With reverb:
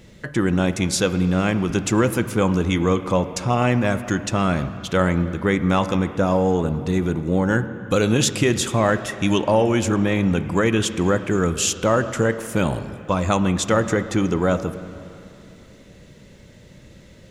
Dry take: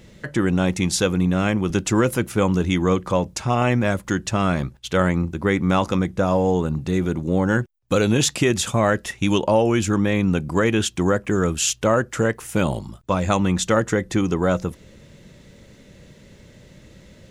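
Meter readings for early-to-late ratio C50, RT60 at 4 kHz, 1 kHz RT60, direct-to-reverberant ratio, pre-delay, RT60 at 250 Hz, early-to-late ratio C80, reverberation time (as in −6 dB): 12.0 dB, 2.7 s, 2.8 s, 11.0 dB, 6 ms, 3.0 s, 12.5 dB, 2.9 s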